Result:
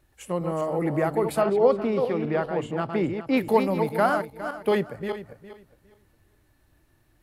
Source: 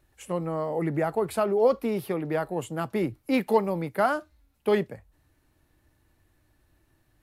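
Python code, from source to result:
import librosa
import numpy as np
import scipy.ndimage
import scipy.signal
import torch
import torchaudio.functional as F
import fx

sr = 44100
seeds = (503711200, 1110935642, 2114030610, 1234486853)

y = fx.reverse_delay_fb(x, sr, ms=205, feedback_pct=44, wet_db=-6.5)
y = fx.lowpass(y, sr, hz=4400.0, slope=12, at=(1.41, 3.37))
y = y * 10.0 ** (1.5 / 20.0)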